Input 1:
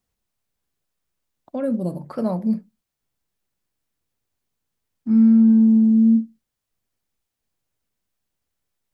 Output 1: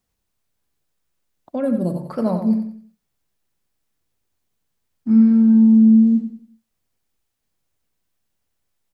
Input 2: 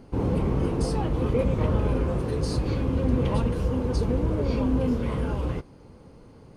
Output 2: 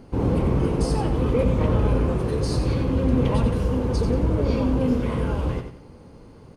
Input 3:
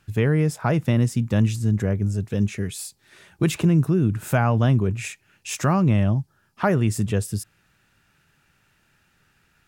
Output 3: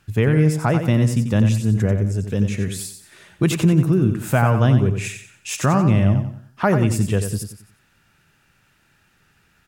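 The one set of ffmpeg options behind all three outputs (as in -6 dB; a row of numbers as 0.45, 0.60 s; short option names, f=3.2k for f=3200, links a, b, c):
-af "aecho=1:1:91|182|273|364:0.398|0.139|0.0488|0.0171,volume=2.5dB"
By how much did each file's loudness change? +2.0, +3.0, +3.5 LU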